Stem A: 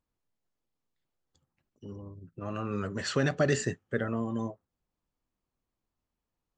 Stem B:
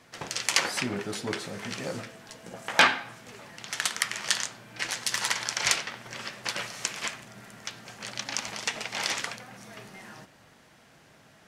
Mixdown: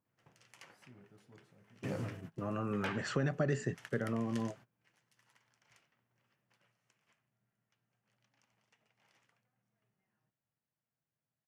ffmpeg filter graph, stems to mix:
-filter_complex "[0:a]highpass=170,volume=1,asplit=2[s0][s1];[1:a]equalizer=f=2900:w=6.1:g=4,adelay=50,volume=0.531,afade=t=out:st=2.12:d=0.61:silence=0.298538[s2];[s1]apad=whole_len=508231[s3];[s2][s3]sidechaingate=range=0.0631:threshold=0.00251:ratio=16:detection=peak[s4];[s0][s4]amix=inputs=2:normalize=0,equalizer=f=125:t=o:w=1:g=10,equalizer=f=4000:t=o:w=1:g=-8,equalizer=f=8000:t=o:w=1:g=-6,acompressor=threshold=0.0178:ratio=2"

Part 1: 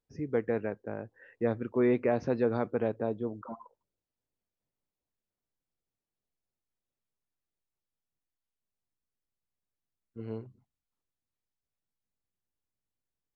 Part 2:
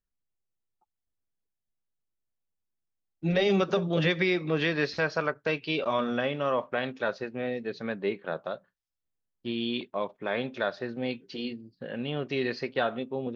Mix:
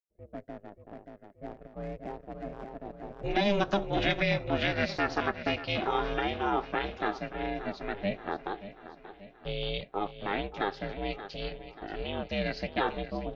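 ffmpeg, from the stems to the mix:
-filter_complex "[0:a]adynamicsmooth=sensitivity=4.5:basefreq=860,volume=0.335,asplit=2[s0][s1];[s1]volume=0.531[s2];[1:a]volume=1.19,asplit=2[s3][s4];[s4]volume=0.211[s5];[s2][s5]amix=inputs=2:normalize=0,aecho=0:1:581|1162|1743|2324|2905|3486|4067|4648:1|0.53|0.281|0.149|0.0789|0.0418|0.0222|0.0117[s6];[s0][s3][s6]amix=inputs=3:normalize=0,agate=range=0.316:threshold=0.002:ratio=16:detection=peak,highpass=200,aeval=exprs='val(0)*sin(2*PI*200*n/s)':c=same"

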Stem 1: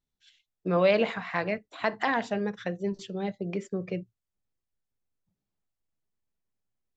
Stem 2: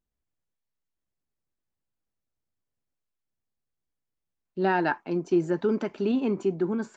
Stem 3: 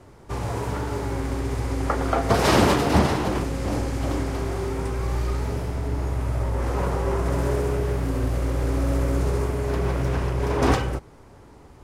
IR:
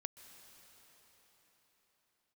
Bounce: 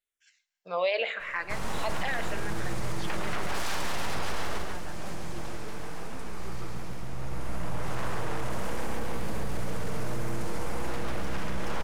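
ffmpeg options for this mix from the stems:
-filter_complex "[0:a]highpass=520,asplit=2[s0][s1];[s1]afreqshift=-0.91[s2];[s0][s2]amix=inputs=2:normalize=1,volume=1.33,asplit=3[s3][s4][s5];[s4]volume=0.335[s6];[s5]volume=0.0794[s7];[1:a]volume=0.112,asplit=2[s8][s9];[2:a]aeval=exprs='abs(val(0))':c=same,adelay=1200,volume=0.944,asplit=2[s10][s11];[s11]volume=0.447[s12];[s9]apad=whole_len=574794[s13];[s10][s13]sidechaincompress=threshold=0.002:ratio=8:attack=16:release=1140[s14];[3:a]atrim=start_sample=2205[s15];[s6][s15]afir=irnorm=-1:irlink=0[s16];[s7][s12]amix=inputs=2:normalize=0,aecho=0:1:139|278|417|556|695:1|0.38|0.144|0.0549|0.0209[s17];[s3][s8][s14][s16][s17]amix=inputs=5:normalize=0,equalizer=f=300:w=0.49:g=-6.5,alimiter=limit=0.112:level=0:latency=1:release=26"

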